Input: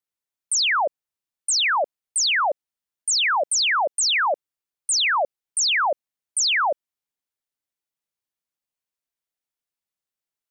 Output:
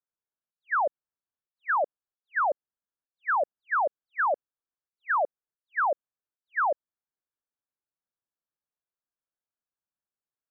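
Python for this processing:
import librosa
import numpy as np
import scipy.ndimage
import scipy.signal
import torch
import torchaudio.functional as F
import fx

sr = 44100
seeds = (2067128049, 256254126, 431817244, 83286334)

y = fx.auto_swell(x, sr, attack_ms=135.0)
y = scipy.signal.sosfilt(scipy.signal.cheby1(6, 1.0, 1700.0, 'lowpass', fs=sr, output='sos'), y)
y = y * 10.0 ** (-3.0 / 20.0)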